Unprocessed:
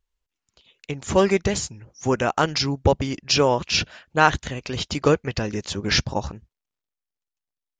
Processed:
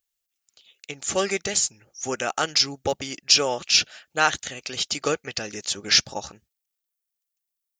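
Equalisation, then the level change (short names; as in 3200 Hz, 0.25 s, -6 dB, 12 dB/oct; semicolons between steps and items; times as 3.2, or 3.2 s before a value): Butterworth band-stop 1000 Hz, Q 6; RIAA curve recording; -3.5 dB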